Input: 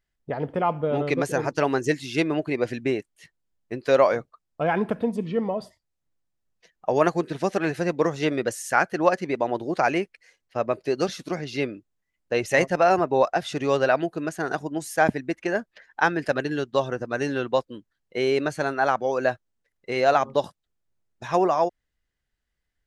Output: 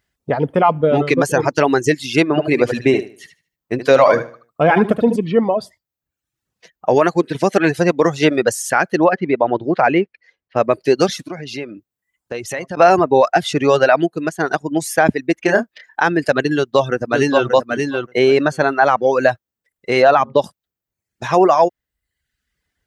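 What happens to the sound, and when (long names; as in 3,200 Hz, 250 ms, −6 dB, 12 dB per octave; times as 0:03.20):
0:02.28–0:05.16: repeating echo 75 ms, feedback 32%, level −5.5 dB
0:06.95–0:07.35: bass and treble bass −3 dB, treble −3 dB
0:09.04–0:10.57: high-frequency loss of the air 300 metres
0:11.24–0:12.77: downward compressor 3 to 1, threshold −37 dBFS
0:14.04–0:14.68: expander for the loud parts, over −35 dBFS
0:15.42–0:16.01: double-tracking delay 30 ms −5.5 dB
0:16.55–0:17.48: delay throw 580 ms, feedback 15%, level −4 dB
0:18.19–0:19.19: high-shelf EQ 6,500 Hz −10 dB
0:20.02–0:20.42: low-pass filter 3,900 Hz
whole clip: high-pass filter 63 Hz; reverb reduction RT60 0.72 s; boost into a limiter +12 dB; level −1 dB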